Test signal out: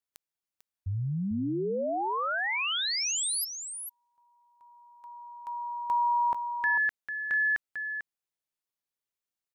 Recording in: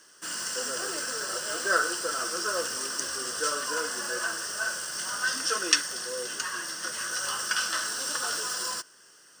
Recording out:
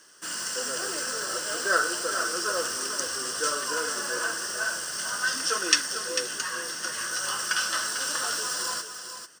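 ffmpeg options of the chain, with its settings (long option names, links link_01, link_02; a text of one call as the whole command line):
ffmpeg -i in.wav -af "aecho=1:1:446:0.376,volume=1dB" out.wav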